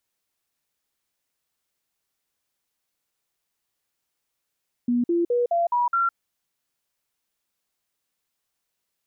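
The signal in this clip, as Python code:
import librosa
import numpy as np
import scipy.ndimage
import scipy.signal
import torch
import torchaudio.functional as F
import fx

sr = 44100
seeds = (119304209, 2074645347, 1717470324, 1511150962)

y = fx.stepped_sweep(sr, from_hz=242.0, direction='up', per_octave=2, tones=6, dwell_s=0.16, gap_s=0.05, level_db=-18.5)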